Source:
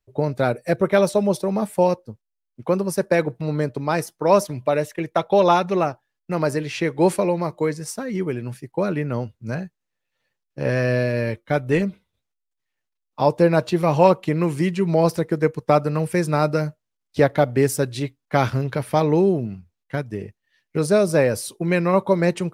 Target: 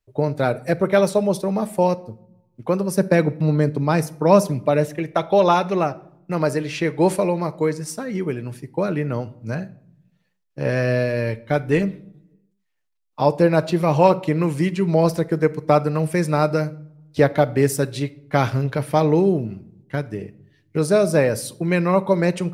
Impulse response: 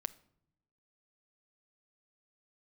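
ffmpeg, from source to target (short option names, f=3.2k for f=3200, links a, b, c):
-filter_complex "[0:a]asettb=1/sr,asplit=3[a][b][c];[a]atrim=end=2.954[d];[b]atrim=start=2.95:end=4.92,asetpts=PTS-STARTPTS,afade=t=in:d=0.004:c=qsin,afade=t=out:st=1.966:d=0.004:c=qsin,equalizer=f=190:w=1.1:g=7.5[e];[c]atrim=start=4.916[f];[d][e]acrossfade=d=0.004:c1=hsin:c2=qsin[g];[g][f]acrossfade=d=0.004:c1=qsin:c2=hsin[h];[1:a]atrim=start_sample=2205[i];[h][i]afir=irnorm=-1:irlink=0,volume=1.5dB"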